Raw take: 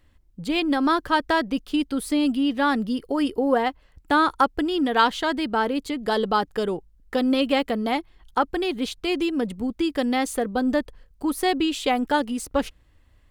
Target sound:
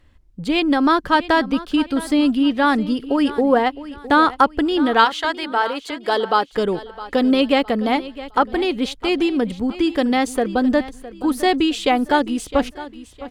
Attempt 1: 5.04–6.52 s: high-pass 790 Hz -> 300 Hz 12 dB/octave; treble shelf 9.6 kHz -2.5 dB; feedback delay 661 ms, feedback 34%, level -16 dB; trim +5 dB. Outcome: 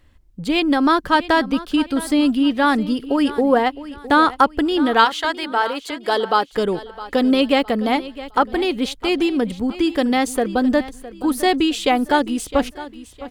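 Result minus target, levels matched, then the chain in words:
8 kHz band +3.0 dB
5.04–6.52 s: high-pass 790 Hz -> 300 Hz 12 dB/octave; treble shelf 9.6 kHz -10.5 dB; feedback delay 661 ms, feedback 34%, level -16 dB; trim +5 dB

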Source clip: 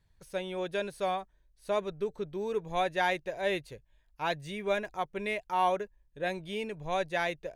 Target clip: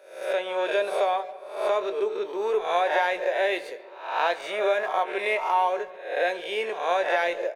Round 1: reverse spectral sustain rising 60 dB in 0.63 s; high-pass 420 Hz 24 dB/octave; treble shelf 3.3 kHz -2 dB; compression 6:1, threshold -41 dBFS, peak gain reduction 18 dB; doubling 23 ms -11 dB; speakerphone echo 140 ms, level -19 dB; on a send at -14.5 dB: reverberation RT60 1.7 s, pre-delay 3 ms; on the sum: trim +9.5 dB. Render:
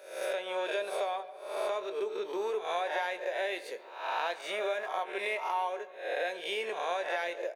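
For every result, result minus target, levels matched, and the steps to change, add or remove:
compression: peak gain reduction +10 dB; 8 kHz band +6.5 dB
change: compression 6:1, threshold -29.5 dBFS, peak gain reduction 8.5 dB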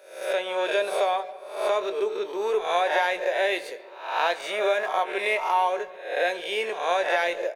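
8 kHz band +5.0 dB
change: treble shelf 3.3 kHz -8.5 dB

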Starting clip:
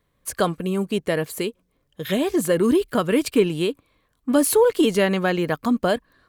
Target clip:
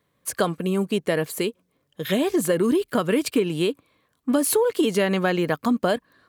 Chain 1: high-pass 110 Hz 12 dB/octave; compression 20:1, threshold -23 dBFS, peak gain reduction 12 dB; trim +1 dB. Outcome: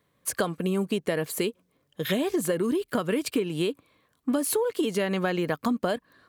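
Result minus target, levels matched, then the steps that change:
compression: peak gain reduction +5.5 dB
change: compression 20:1, threshold -17 dBFS, peak gain reduction 6.5 dB

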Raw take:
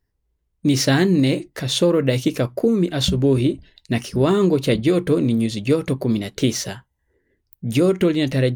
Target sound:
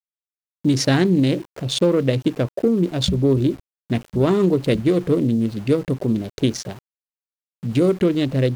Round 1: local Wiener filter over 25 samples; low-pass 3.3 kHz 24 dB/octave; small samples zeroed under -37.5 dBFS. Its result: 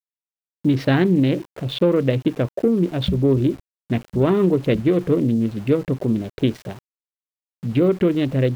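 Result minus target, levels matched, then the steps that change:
8 kHz band -15.5 dB
change: low-pass 11 kHz 24 dB/octave

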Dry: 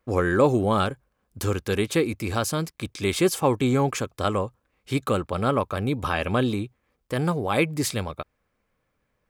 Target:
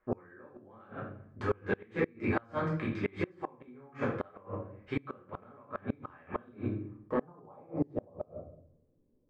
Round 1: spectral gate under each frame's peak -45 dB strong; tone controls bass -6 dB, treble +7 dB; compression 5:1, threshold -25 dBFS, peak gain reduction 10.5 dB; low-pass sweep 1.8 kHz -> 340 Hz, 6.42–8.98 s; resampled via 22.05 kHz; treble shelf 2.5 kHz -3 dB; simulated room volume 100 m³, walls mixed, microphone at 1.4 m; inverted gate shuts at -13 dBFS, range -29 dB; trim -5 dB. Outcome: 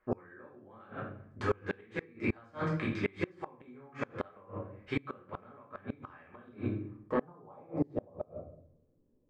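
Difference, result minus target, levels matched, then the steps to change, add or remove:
4 kHz band +4.0 dB
change: treble shelf 2.5 kHz -10 dB

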